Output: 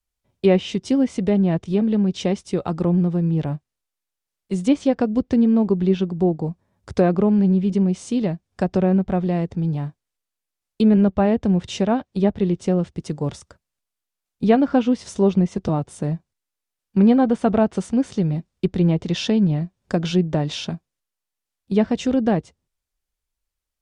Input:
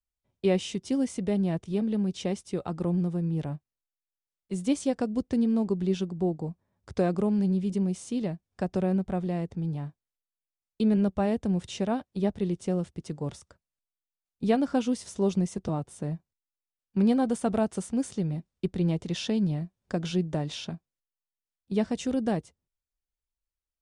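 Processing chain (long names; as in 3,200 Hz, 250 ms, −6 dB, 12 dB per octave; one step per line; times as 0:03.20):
treble cut that deepens with the level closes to 2,900 Hz, closed at −22.5 dBFS
level +8.5 dB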